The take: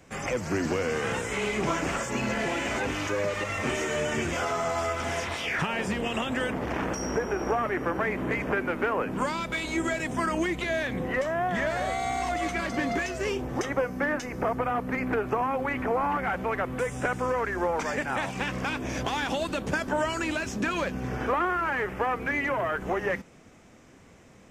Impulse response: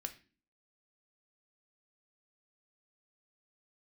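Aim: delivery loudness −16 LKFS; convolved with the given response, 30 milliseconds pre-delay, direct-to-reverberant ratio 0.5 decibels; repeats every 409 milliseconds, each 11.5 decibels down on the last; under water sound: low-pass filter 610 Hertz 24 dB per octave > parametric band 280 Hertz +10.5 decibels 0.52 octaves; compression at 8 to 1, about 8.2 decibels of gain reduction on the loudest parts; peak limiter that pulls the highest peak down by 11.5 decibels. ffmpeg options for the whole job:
-filter_complex "[0:a]acompressor=threshold=-31dB:ratio=8,alimiter=level_in=5.5dB:limit=-24dB:level=0:latency=1,volume=-5.5dB,aecho=1:1:409|818|1227:0.266|0.0718|0.0194,asplit=2[link_01][link_02];[1:a]atrim=start_sample=2205,adelay=30[link_03];[link_02][link_03]afir=irnorm=-1:irlink=0,volume=2dB[link_04];[link_01][link_04]amix=inputs=2:normalize=0,lowpass=frequency=610:width=0.5412,lowpass=frequency=610:width=1.3066,equalizer=frequency=280:width_type=o:width=0.52:gain=10.5,volume=18.5dB"

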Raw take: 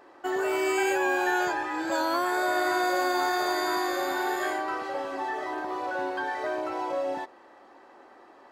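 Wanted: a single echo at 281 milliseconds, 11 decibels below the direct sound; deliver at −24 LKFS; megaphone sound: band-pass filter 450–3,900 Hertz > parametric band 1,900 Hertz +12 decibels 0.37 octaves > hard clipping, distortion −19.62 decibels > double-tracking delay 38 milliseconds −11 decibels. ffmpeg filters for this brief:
ffmpeg -i in.wav -filter_complex "[0:a]highpass=450,lowpass=3900,equalizer=frequency=1900:width_type=o:width=0.37:gain=12,aecho=1:1:281:0.282,asoftclip=type=hard:threshold=-19dB,asplit=2[link_01][link_02];[link_02]adelay=38,volume=-11dB[link_03];[link_01][link_03]amix=inputs=2:normalize=0,volume=2dB" out.wav

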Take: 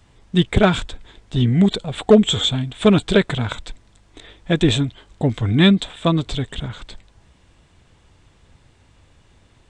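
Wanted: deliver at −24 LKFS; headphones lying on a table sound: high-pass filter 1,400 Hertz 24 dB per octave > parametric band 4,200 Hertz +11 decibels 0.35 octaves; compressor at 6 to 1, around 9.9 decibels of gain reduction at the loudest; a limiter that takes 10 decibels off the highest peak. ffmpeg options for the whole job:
ffmpeg -i in.wav -af "acompressor=threshold=-18dB:ratio=6,alimiter=limit=-18dB:level=0:latency=1,highpass=frequency=1400:width=0.5412,highpass=frequency=1400:width=1.3066,equalizer=frequency=4200:width_type=o:width=0.35:gain=11,volume=7dB" out.wav

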